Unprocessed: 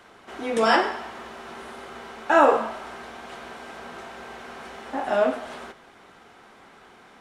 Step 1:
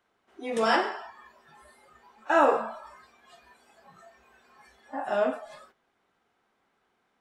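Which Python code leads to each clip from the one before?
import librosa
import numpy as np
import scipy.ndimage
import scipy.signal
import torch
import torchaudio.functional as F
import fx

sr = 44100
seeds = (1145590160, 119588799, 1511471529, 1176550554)

y = fx.noise_reduce_blind(x, sr, reduce_db=18)
y = y * librosa.db_to_amplitude(-4.5)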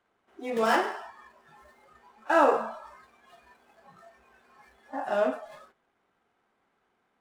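y = scipy.ndimage.median_filter(x, 9, mode='constant')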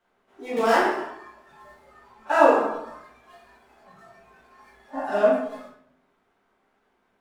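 y = fx.room_shoebox(x, sr, seeds[0], volume_m3=110.0, walls='mixed', distance_m=1.6)
y = y * librosa.db_to_amplitude(-2.0)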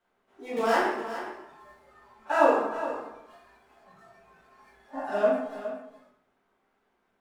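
y = x + 10.0 ** (-12.0 / 20.0) * np.pad(x, (int(414 * sr / 1000.0), 0))[:len(x)]
y = y * librosa.db_to_amplitude(-4.5)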